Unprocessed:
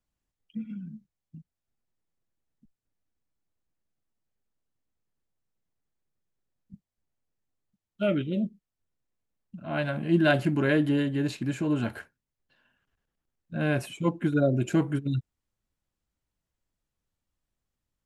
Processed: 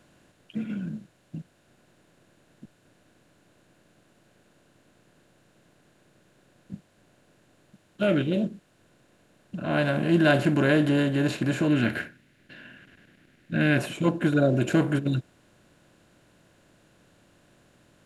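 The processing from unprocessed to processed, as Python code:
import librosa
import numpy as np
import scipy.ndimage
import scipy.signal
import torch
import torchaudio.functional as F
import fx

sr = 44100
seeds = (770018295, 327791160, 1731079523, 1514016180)

y = fx.bin_compress(x, sr, power=0.6)
y = fx.graphic_eq(y, sr, hz=(250, 500, 1000, 2000, 8000), db=(4, -4, -8, 8, -5), at=(11.68, 13.78))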